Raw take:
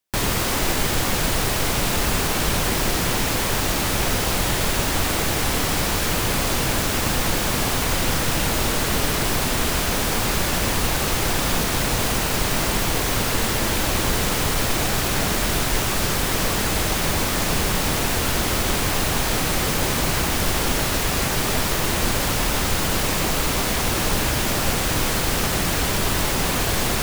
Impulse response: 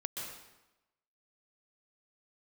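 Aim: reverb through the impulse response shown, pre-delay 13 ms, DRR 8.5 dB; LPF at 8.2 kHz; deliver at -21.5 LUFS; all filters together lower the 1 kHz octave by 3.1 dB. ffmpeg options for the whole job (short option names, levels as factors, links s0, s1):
-filter_complex "[0:a]lowpass=8200,equalizer=f=1000:t=o:g=-4,asplit=2[s0][s1];[1:a]atrim=start_sample=2205,adelay=13[s2];[s1][s2]afir=irnorm=-1:irlink=0,volume=0.335[s3];[s0][s3]amix=inputs=2:normalize=0,volume=1.12"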